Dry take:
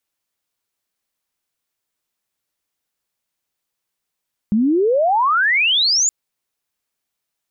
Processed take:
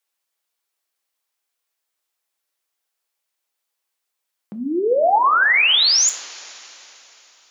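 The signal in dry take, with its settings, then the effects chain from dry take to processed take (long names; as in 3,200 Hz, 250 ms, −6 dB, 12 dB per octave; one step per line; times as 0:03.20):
glide logarithmic 200 Hz → 7,200 Hz −12.5 dBFS → −13 dBFS 1.57 s
high-pass filter 450 Hz 12 dB per octave
coupled-rooms reverb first 0.34 s, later 3.8 s, from −21 dB, DRR 6.5 dB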